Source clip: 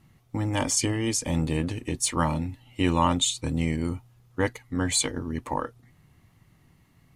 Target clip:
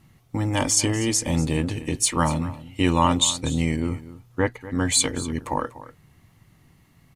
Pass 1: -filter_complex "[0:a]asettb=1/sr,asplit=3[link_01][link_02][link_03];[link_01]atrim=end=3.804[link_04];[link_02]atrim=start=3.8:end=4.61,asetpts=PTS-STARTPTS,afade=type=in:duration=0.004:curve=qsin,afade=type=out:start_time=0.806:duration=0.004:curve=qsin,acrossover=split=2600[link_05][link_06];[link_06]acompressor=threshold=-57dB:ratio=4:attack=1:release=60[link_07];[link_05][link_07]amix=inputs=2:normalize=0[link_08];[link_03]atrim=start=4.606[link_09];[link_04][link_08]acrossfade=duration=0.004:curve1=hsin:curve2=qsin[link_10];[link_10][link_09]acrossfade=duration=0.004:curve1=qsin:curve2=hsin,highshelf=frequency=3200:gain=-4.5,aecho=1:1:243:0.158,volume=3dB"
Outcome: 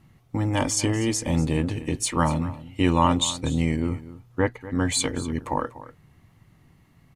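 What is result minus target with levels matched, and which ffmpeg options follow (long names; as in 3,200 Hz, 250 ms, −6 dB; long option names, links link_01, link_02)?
8,000 Hz band −4.0 dB
-filter_complex "[0:a]asettb=1/sr,asplit=3[link_01][link_02][link_03];[link_01]atrim=end=3.804[link_04];[link_02]atrim=start=3.8:end=4.61,asetpts=PTS-STARTPTS,afade=type=in:duration=0.004:curve=qsin,afade=type=out:start_time=0.806:duration=0.004:curve=qsin,acrossover=split=2600[link_05][link_06];[link_06]acompressor=threshold=-57dB:ratio=4:attack=1:release=60[link_07];[link_05][link_07]amix=inputs=2:normalize=0[link_08];[link_03]atrim=start=4.606[link_09];[link_04][link_08]acrossfade=duration=0.004:curve1=hsin:curve2=qsin[link_10];[link_10][link_09]acrossfade=duration=0.004:curve1=qsin:curve2=hsin,highshelf=frequency=3200:gain=2,aecho=1:1:243:0.158,volume=3dB"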